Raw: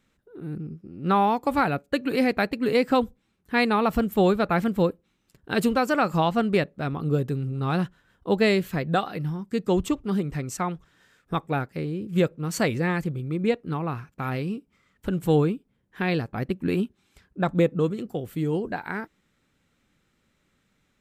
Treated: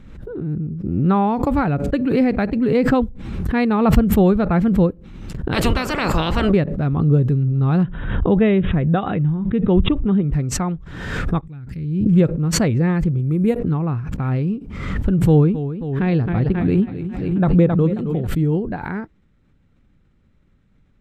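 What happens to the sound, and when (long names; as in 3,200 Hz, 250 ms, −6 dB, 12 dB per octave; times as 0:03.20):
0:05.52–0:06.51: ceiling on every frequency bin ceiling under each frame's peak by 27 dB
0:07.83–0:10.33: linear-phase brick-wall low-pass 3,900 Hz
0:11.41–0:12.06: guitar amp tone stack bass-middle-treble 6-0-2
0:13.19–0:13.59: bad sample-rate conversion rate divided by 4×, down none, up hold
0:15.27–0:18.27: feedback echo with a swinging delay time 270 ms, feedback 57%, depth 92 cents, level −12 dB
whole clip: RIAA equalisation playback; background raised ahead of every attack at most 41 dB per second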